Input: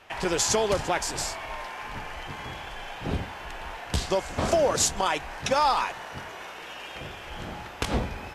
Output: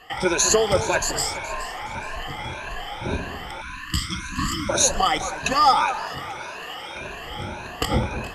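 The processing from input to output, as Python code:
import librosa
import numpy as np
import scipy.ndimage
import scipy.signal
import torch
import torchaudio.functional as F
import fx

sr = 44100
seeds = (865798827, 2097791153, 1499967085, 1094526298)

y = fx.spec_ripple(x, sr, per_octave=1.5, drift_hz=1.8, depth_db=19)
y = fx.echo_alternate(y, sr, ms=210, hz=1500.0, feedback_pct=57, wet_db=-11)
y = fx.spec_erase(y, sr, start_s=3.62, length_s=1.08, low_hz=340.0, high_hz=970.0)
y = F.gain(torch.from_numpy(y), 1.0).numpy()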